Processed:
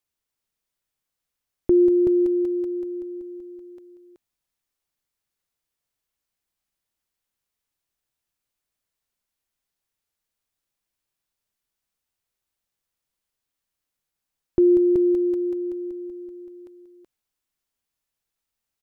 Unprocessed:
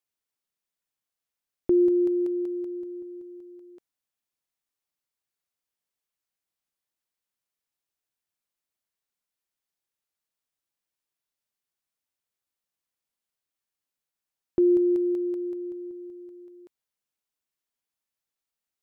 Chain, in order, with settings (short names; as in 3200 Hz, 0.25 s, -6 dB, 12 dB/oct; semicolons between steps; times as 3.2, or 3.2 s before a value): low shelf 95 Hz +11 dB; echo 0.376 s -5.5 dB; gain +3 dB